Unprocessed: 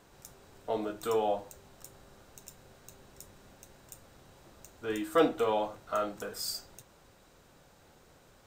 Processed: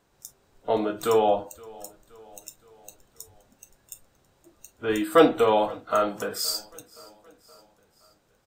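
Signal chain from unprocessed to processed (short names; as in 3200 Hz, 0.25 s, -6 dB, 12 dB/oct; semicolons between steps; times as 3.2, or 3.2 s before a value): spectral noise reduction 16 dB; feedback echo 0.521 s, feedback 54%, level -23.5 dB; gain +8.5 dB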